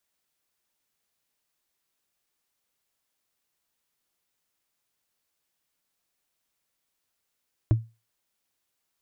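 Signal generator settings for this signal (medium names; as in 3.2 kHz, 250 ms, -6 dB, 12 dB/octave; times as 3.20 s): wood hit, lowest mode 113 Hz, decay 0.27 s, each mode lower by 8 dB, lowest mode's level -13 dB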